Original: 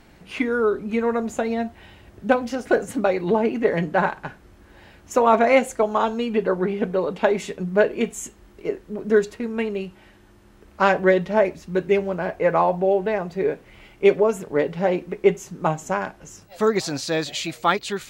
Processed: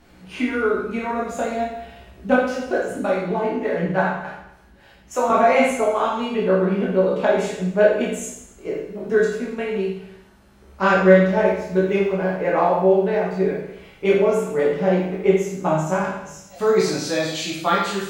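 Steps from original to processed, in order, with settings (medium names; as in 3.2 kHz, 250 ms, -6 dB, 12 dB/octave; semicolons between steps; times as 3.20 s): 2.36–5.30 s: harmonic tremolo 3.4 Hz, depth 70%, crossover 460 Hz; reverberation RT60 0.80 s, pre-delay 16 ms, DRR -5 dB; trim -5 dB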